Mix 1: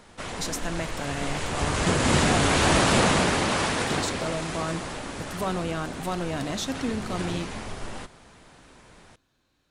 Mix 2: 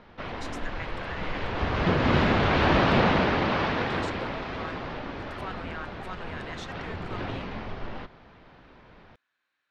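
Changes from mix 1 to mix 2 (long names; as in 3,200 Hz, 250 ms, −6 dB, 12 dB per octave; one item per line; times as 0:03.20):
speech: add resonant band-pass 1,800 Hz, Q 1.9
background: add Bessel low-pass filter 2,700 Hz, order 8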